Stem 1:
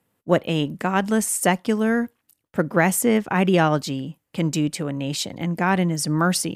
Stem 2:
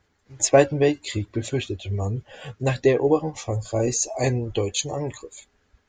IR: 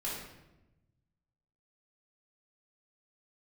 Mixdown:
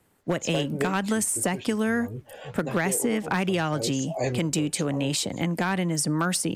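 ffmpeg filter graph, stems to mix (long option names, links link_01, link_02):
-filter_complex "[0:a]equalizer=frequency=8500:width_type=o:width=0.44:gain=6,acompressor=threshold=-20dB:ratio=5,volume=3dB,asplit=2[link_01][link_02];[1:a]equalizer=frequency=540:width_type=o:width=2.2:gain=7.5,flanger=delay=3.2:depth=7.6:regen=88:speed=1.9:shape=sinusoidal,volume=-1dB[link_03];[link_02]apad=whole_len=259741[link_04];[link_03][link_04]sidechaincompress=threshold=-30dB:ratio=8:attack=46:release=258[link_05];[link_01][link_05]amix=inputs=2:normalize=0,asoftclip=type=hard:threshold=-11.5dB,acrossover=split=270|1400[link_06][link_07][link_08];[link_06]acompressor=threshold=-28dB:ratio=4[link_09];[link_07]acompressor=threshold=-27dB:ratio=4[link_10];[link_08]acompressor=threshold=-25dB:ratio=4[link_11];[link_09][link_10][link_11]amix=inputs=3:normalize=0"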